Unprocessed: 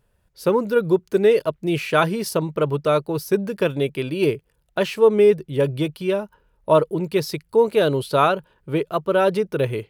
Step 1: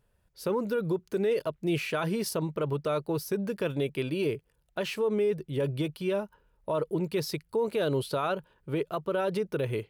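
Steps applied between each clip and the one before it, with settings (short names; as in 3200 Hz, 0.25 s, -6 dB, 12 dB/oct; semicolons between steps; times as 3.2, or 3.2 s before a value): limiter -15.5 dBFS, peak gain reduction 10.5 dB; gain -5 dB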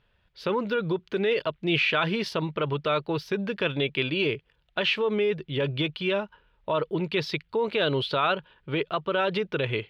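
EQ curve 520 Hz 0 dB, 3400 Hz +12 dB, 9100 Hz -20 dB; gain +1.5 dB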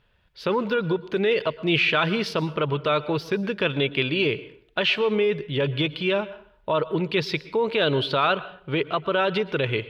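plate-style reverb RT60 0.56 s, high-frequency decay 0.75×, pre-delay 0.105 s, DRR 16.5 dB; gain +3 dB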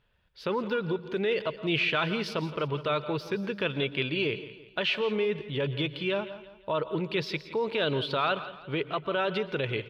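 feedback echo 0.169 s, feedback 40%, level -14.5 dB; gain -6 dB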